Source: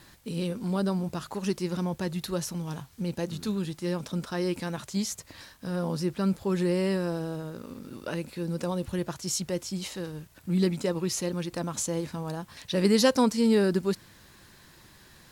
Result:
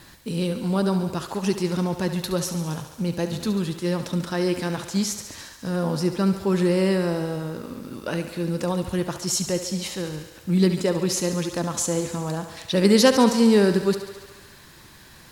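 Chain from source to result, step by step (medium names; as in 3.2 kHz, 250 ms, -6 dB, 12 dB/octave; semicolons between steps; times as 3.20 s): thinning echo 70 ms, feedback 76%, high-pass 250 Hz, level -10.5 dB; trim +5.5 dB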